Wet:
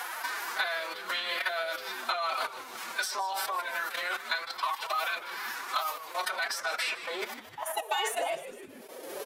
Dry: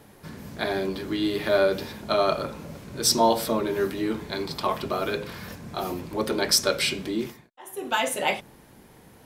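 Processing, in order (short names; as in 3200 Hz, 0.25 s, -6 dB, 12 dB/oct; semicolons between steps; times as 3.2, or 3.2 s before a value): gate -43 dBFS, range -11 dB; level quantiser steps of 16 dB; high-pass sweep 1200 Hz -> 460 Hz, 6.6–8.83; formant-preserving pitch shift +9 st; on a send: frequency-shifting echo 0.153 s, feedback 37%, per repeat -140 Hz, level -16 dB; on the sum: three-band squash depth 100%; gain +3 dB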